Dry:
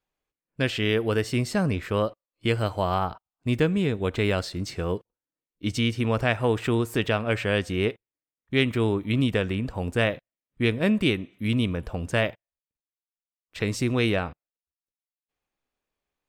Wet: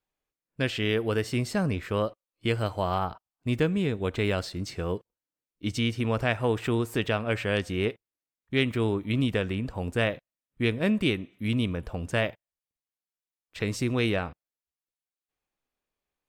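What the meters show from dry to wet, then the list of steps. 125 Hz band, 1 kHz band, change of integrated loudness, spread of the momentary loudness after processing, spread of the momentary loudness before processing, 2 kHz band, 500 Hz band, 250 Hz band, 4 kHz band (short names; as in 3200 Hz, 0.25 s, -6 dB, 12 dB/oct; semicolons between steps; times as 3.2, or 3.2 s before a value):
-2.5 dB, -2.5 dB, -2.5 dB, 7 LU, 7 LU, -2.5 dB, -2.5 dB, -2.5 dB, -2.5 dB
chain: gain -2.5 dB; AAC 128 kbps 48000 Hz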